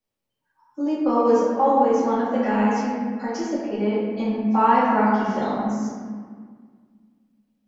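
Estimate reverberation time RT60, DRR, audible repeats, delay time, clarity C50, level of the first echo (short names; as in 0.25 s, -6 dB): 1.8 s, -8.5 dB, none, none, -2.0 dB, none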